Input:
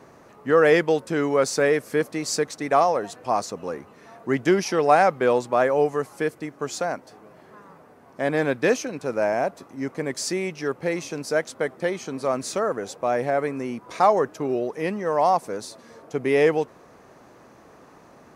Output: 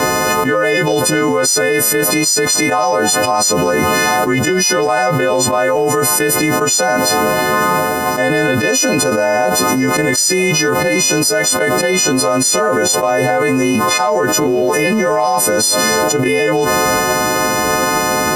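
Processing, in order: frequency quantiser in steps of 3 st; transient shaper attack +10 dB, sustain +6 dB; fast leveller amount 100%; gain -7.5 dB

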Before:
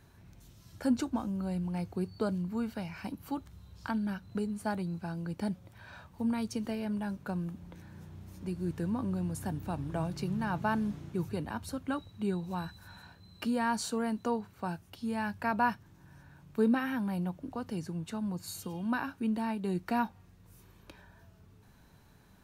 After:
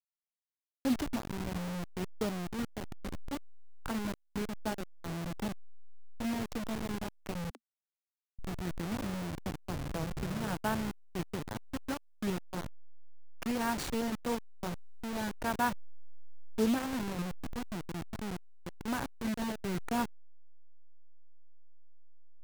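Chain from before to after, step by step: level-crossing sampler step -29.5 dBFS; 7.5–8.39 steep high-pass 230 Hz 96 dB/oct; gain -1.5 dB

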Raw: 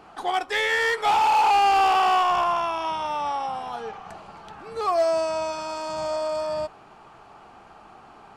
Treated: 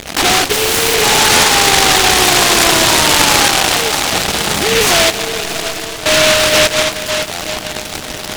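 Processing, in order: fuzz box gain 43 dB, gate -46 dBFS; 3.48–4.13 HPF 840 Hz 6 dB/oct; 5.1–6.06 wrapped overs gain 18.5 dB; LPF 1500 Hz 12 dB/oct; diffused feedback echo 0.672 s, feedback 42%, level -10 dB; on a send at -9 dB: reverb RT60 3.6 s, pre-delay 84 ms; on the sum: stuck buffer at 1.32/7.31, samples 512, times 8; noise-modulated delay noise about 2500 Hz, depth 0.27 ms; gain +4 dB

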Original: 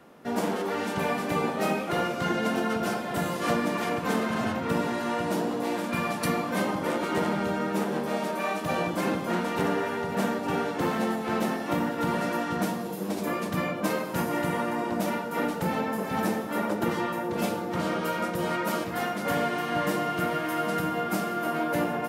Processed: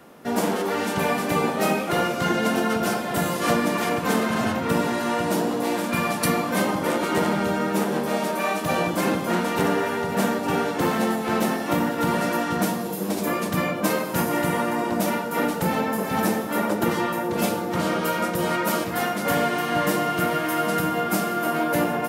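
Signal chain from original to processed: high shelf 6500 Hz +6.5 dB; gain +4.5 dB

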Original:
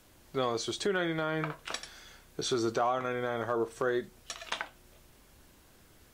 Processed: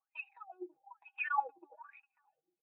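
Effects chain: median filter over 25 samples; level quantiser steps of 18 dB; speed mistake 33 rpm record played at 78 rpm; bell 140 Hz +10.5 dB 1.4 oct; notch 420 Hz, Q 12; small resonant body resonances 780/2500/3800 Hz, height 15 dB, ringing for 25 ms; negative-ratio compressor -33 dBFS, ratio -0.5; echo with dull and thin repeats by turns 0.541 s, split 1900 Hz, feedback 65%, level -12 dB; wah 1.1 Hz 350–2800 Hz, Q 12; comb 6.2 ms, depth 71%; spectral expander 1.5:1; gain +6.5 dB

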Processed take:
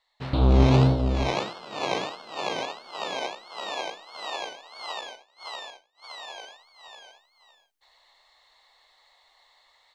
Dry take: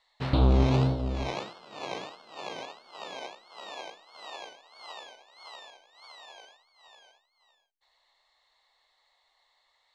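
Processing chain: 5.01–6.11 expander -47 dBFS; AGC gain up to 13 dB; gain -4 dB

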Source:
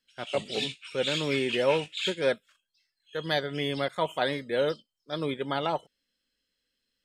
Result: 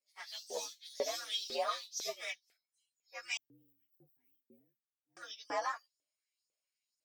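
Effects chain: inharmonic rescaling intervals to 118%; 3.37–5.17 inverse Chebyshev band-stop 560–8800 Hz, stop band 50 dB; LFO high-pass saw up 2 Hz 430–6500 Hz; gain -6.5 dB

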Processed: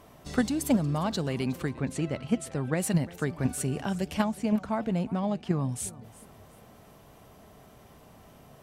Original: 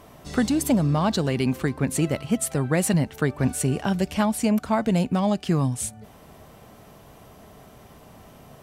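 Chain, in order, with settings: 4.24–5.69 high shelf 4000 Hz -11.5 dB; in parallel at 0 dB: level quantiser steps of 19 dB; 1.71–2.8 on the sum: air absorption 66 m; warbling echo 0.357 s, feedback 34%, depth 200 cents, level -19.5 dB; gain -8 dB

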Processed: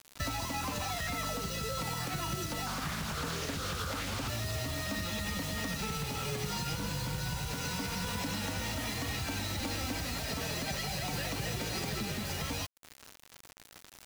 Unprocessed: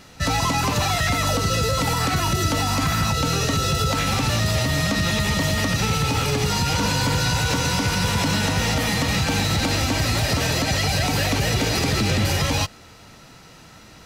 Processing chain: 6.71–7.54 low shelf 130 Hz +8.5 dB; compressor 16:1, threshold -28 dBFS, peak gain reduction 15 dB; flange 0.22 Hz, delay 2.7 ms, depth 3.3 ms, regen -39%; bit-crush 7-bit; 2.66–4.28 Doppler distortion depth 0.58 ms

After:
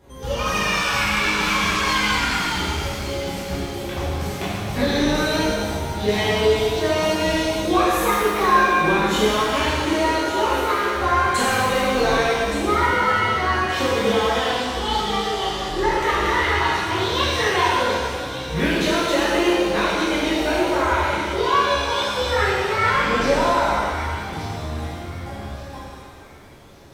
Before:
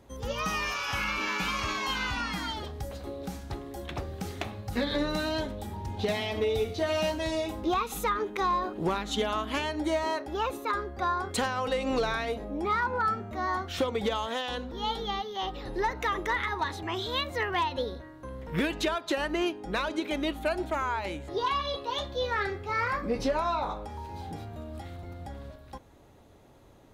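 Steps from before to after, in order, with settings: on a send: thin delay 1.172 s, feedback 37%, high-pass 2400 Hz, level -10.5 dB; on the sum: shimmer reverb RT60 1.7 s, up +7 st, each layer -8 dB, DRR -9.5 dB

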